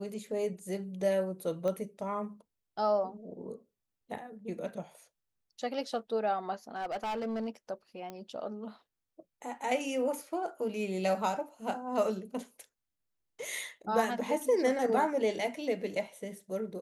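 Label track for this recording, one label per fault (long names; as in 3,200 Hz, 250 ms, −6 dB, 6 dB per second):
1.680000	1.680000	click −23 dBFS
6.760000	7.480000	clipping −31 dBFS
8.100000	8.100000	click −27 dBFS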